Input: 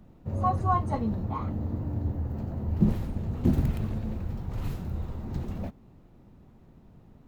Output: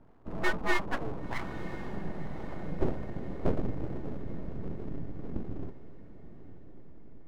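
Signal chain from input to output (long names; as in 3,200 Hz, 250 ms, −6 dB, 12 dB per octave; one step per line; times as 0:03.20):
low-pass filter sweep 960 Hz → 170 Hz, 0:01.73–0:05.58
full-wave rectification
feedback delay with all-pass diffusion 1,013 ms, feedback 50%, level −15 dB
level −4.5 dB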